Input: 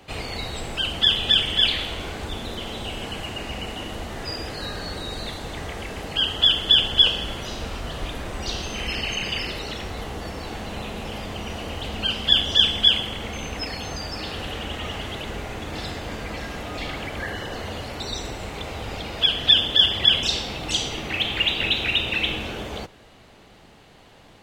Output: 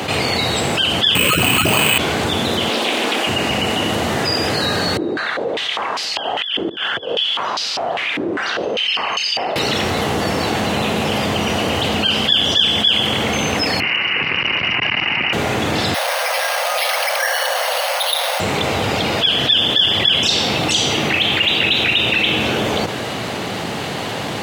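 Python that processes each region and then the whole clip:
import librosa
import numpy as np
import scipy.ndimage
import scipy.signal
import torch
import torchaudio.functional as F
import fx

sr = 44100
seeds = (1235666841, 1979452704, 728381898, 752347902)

y = fx.chain(x, sr, fx.freq_invert(carrier_hz=3000),
    fx.resample_bad(factor=8, down='none', up='hold'),
    fx.env_flatten(amount_pct=100), at=(1.15, 1.98))
y = fx.chain(y, sr, fx.steep_highpass(hz=230.0, slope=48),
    fx.doppler_dist(depth_ms=0.29), at=(2.69, 3.27))
y = fx.chain(y, sr, fx.over_compress(threshold_db=-25.0, ratio=-0.5),
    fx.filter_held_bandpass(hz=5.0, low_hz=340.0, high_hz=4800.0), at=(4.97, 9.56))
y = fx.chain(y, sr, fx.peak_eq(hz=890.0, db=6.0, octaves=0.53),
    fx.freq_invert(carrier_hz=2900),
    fx.transformer_sat(knee_hz=550.0), at=(13.8, 15.33))
y = fx.chain(y, sr, fx.brickwall_bandpass(low_hz=490.0, high_hz=5100.0),
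    fx.resample_bad(factor=6, down='none', up='hold'), at=(15.94, 18.4))
y = scipy.signal.sosfilt(scipy.signal.butter(4, 100.0, 'highpass', fs=sr, output='sos'), y)
y = fx.env_flatten(y, sr, amount_pct=70)
y = y * 10.0 ** (-1.0 / 20.0)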